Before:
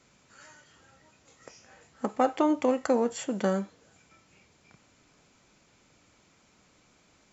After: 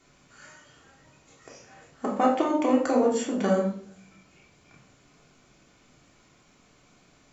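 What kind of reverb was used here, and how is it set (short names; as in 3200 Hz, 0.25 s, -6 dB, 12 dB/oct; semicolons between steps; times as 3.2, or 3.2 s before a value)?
shoebox room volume 720 m³, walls furnished, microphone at 3.3 m; gain -1.5 dB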